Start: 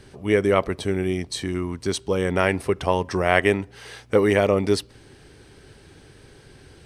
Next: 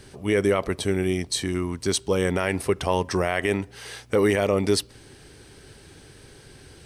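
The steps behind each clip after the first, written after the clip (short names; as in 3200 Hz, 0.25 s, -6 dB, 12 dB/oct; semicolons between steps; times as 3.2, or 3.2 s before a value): high shelf 4900 Hz +7.5 dB; limiter -9.5 dBFS, peak gain reduction 9 dB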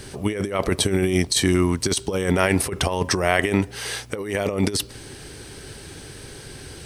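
high shelf 5500 Hz +4 dB; negative-ratio compressor -25 dBFS, ratio -0.5; gain +5 dB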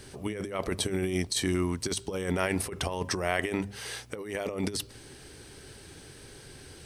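notches 50/100/150/200 Hz; gain -9 dB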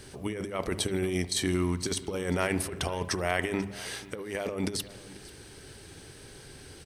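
echo 0.489 s -19.5 dB; spring tank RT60 1.1 s, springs 56 ms, chirp 25 ms, DRR 15 dB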